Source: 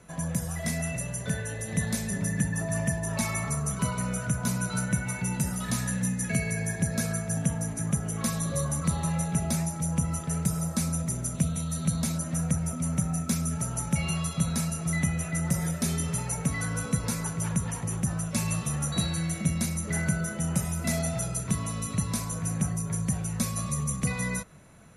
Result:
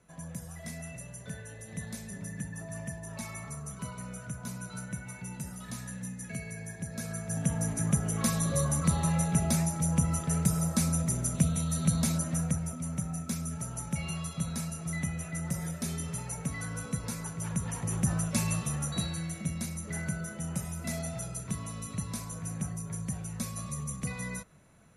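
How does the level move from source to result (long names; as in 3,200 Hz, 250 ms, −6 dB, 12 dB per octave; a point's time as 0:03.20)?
0:06.87 −11 dB
0:07.65 +0.5 dB
0:12.18 +0.5 dB
0:12.81 −6.5 dB
0:17.36 −6.5 dB
0:18.12 +1 dB
0:19.36 −7 dB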